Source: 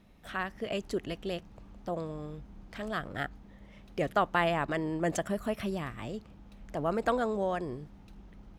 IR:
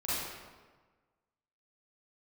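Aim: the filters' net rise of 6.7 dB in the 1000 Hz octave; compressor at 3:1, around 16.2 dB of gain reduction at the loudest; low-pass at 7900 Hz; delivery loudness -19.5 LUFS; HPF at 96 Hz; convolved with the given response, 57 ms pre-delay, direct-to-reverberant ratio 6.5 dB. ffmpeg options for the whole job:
-filter_complex "[0:a]highpass=96,lowpass=7.9k,equalizer=f=1k:t=o:g=9,acompressor=threshold=-39dB:ratio=3,asplit=2[a][b];[1:a]atrim=start_sample=2205,adelay=57[c];[b][c]afir=irnorm=-1:irlink=0,volume=-13dB[d];[a][d]amix=inputs=2:normalize=0,volume=21dB"

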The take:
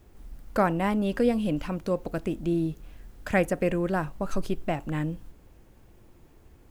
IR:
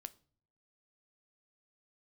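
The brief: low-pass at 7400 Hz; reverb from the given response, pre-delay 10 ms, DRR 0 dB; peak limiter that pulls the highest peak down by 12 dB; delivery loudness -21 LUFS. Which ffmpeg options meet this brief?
-filter_complex "[0:a]lowpass=7.4k,alimiter=limit=-23dB:level=0:latency=1,asplit=2[a][b];[1:a]atrim=start_sample=2205,adelay=10[c];[b][c]afir=irnorm=-1:irlink=0,volume=5dB[d];[a][d]amix=inputs=2:normalize=0,volume=9.5dB"

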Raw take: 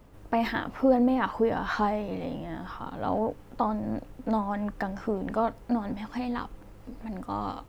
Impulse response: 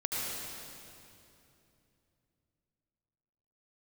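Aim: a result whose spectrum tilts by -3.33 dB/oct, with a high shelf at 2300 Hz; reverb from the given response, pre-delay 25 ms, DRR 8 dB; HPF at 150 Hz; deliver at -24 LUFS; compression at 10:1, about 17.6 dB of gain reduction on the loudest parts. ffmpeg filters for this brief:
-filter_complex "[0:a]highpass=150,highshelf=f=2.3k:g=-7.5,acompressor=threshold=-36dB:ratio=10,asplit=2[a][b];[1:a]atrim=start_sample=2205,adelay=25[c];[b][c]afir=irnorm=-1:irlink=0,volume=-14.5dB[d];[a][d]amix=inputs=2:normalize=0,volume=16.5dB"

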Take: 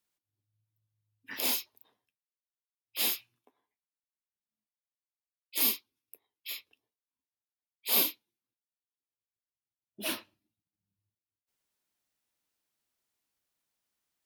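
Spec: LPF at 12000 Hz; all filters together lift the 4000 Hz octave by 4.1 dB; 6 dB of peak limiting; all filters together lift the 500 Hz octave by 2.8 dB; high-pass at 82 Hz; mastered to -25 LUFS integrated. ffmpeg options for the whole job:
-af "highpass=82,lowpass=12k,equalizer=f=500:t=o:g=3.5,equalizer=f=4k:t=o:g=5,volume=8.5dB,alimiter=limit=-11dB:level=0:latency=1"

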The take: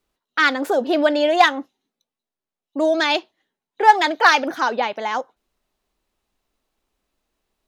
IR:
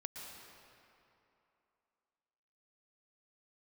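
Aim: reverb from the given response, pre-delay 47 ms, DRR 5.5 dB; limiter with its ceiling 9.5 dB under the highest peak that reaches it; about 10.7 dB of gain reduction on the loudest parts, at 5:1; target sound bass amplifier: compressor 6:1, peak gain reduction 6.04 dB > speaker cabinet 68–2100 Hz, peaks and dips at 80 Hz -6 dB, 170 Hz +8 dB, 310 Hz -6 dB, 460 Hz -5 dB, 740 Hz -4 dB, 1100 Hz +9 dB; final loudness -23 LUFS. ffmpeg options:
-filter_complex "[0:a]acompressor=threshold=-18dB:ratio=5,alimiter=limit=-17.5dB:level=0:latency=1,asplit=2[a][b];[1:a]atrim=start_sample=2205,adelay=47[c];[b][c]afir=irnorm=-1:irlink=0,volume=-3.5dB[d];[a][d]amix=inputs=2:normalize=0,acompressor=threshold=-25dB:ratio=6,highpass=f=68:w=0.5412,highpass=f=68:w=1.3066,equalizer=f=80:t=q:w=4:g=-6,equalizer=f=170:t=q:w=4:g=8,equalizer=f=310:t=q:w=4:g=-6,equalizer=f=460:t=q:w=4:g=-5,equalizer=f=740:t=q:w=4:g=-4,equalizer=f=1.1k:t=q:w=4:g=9,lowpass=f=2.1k:w=0.5412,lowpass=f=2.1k:w=1.3066,volume=8.5dB"

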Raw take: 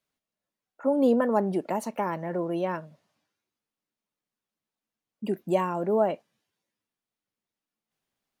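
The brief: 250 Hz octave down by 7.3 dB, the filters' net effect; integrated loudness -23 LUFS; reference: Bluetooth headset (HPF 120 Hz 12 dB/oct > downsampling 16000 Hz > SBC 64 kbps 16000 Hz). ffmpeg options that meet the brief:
-af "highpass=120,equalizer=f=250:t=o:g=-9,aresample=16000,aresample=44100,volume=7dB" -ar 16000 -c:a sbc -b:a 64k

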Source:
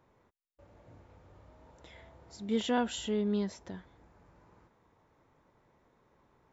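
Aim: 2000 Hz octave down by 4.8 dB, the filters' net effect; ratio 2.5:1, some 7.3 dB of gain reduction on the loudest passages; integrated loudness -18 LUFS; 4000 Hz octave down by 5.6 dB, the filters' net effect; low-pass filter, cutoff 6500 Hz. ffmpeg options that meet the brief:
-af "lowpass=6.5k,equalizer=f=2k:t=o:g=-6,equalizer=f=4k:t=o:g=-4.5,acompressor=threshold=-36dB:ratio=2.5,volume=21.5dB"

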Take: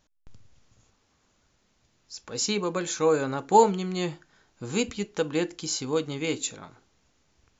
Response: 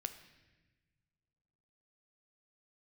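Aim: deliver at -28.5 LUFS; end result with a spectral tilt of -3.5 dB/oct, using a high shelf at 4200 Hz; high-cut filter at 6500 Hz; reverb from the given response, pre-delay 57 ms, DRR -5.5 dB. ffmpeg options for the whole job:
-filter_complex "[0:a]lowpass=6.5k,highshelf=f=4.2k:g=7.5,asplit=2[a][b];[1:a]atrim=start_sample=2205,adelay=57[c];[b][c]afir=irnorm=-1:irlink=0,volume=7.5dB[d];[a][d]amix=inputs=2:normalize=0,volume=-9dB"

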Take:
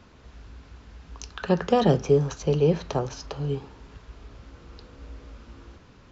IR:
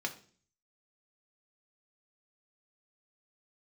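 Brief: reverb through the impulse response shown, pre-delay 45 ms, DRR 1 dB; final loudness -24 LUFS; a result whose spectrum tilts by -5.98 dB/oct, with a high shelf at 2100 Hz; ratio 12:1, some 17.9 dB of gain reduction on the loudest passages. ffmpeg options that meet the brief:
-filter_complex "[0:a]highshelf=f=2.1k:g=-4.5,acompressor=threshold=-33dB:ratio=12,asplit=2[a][b];[1:a]atrim=start_sample=2205,adelay=45[c];[b][c]afir=irnorm=-1:irlink=0,volume=-4dB[d];[a][d]amix=inputs=2:normalize=0,volume=16dB"

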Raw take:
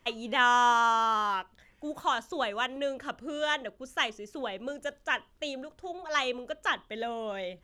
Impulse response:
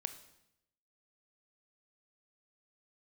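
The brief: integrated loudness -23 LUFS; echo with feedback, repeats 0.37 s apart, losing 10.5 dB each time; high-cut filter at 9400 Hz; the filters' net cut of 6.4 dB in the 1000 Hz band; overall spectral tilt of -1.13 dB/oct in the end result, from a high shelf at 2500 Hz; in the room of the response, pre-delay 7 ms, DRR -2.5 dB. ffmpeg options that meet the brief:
-filter_complex "[0:a]lowpass=9.4k,equalizer=f=1k:t=o:g=-8.5,highshelf=f=2.5k:g=3.5,aecho=1:1:370|740|1110:0.299|0.0896|0.0269,asplit=2[a][b];[1:a]atrim=start_sample=2205,adelay=7[c];[b][c]afir=irnorm=-1:irlink=0,volume=4dB[d];[a][d]amix=inputs=2:normalize=0,volume=5dB"

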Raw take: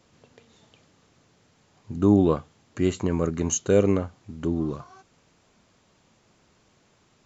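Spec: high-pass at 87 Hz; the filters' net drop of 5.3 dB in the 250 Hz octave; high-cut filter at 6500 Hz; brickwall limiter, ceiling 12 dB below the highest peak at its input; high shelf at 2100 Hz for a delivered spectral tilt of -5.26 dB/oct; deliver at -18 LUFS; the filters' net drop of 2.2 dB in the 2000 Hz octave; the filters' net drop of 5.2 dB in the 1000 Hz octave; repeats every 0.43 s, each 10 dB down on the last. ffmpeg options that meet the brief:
-af "highpass=87,lowpass=6.5k,equalizer=f=250:t=o:g=-7,equalizer=f=1k:t=o:g=-6.5,equalizer=f=2k:t=o:g=-4,highshelf=f=2.1k:g=5.5,alimiter=limit=-22dB:level=0:latency=1,aecho=1:1:430|860|1290|1720:0.316|0.101|0.0324|0.0104,volume=16.5dB"

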